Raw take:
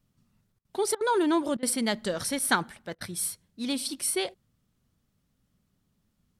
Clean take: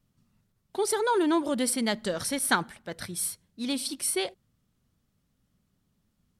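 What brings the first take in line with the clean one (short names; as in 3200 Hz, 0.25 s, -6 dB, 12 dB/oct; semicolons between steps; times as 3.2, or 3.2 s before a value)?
interpolate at 0.59/0.95/1.57/2.95, 57 ms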